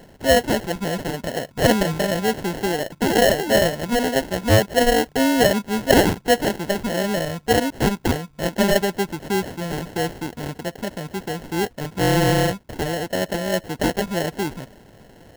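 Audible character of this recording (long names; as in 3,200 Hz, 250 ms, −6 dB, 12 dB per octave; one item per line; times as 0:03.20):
aliases and images of a low sample rate 1,200 Hz, jitter 0%
AAC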